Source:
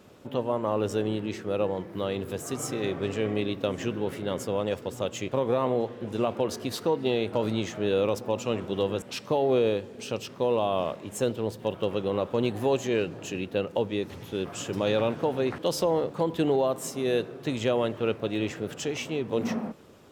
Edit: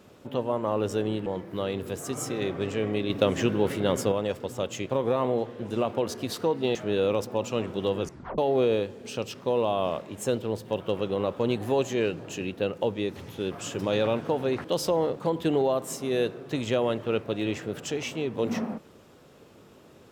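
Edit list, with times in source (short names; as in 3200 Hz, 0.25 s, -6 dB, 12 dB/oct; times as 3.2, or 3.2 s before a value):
1.26–1.68 cut
3.52–4.54 gain +5.5 dB
7.17–7.69 cut
8.95 tape stop 0.37 s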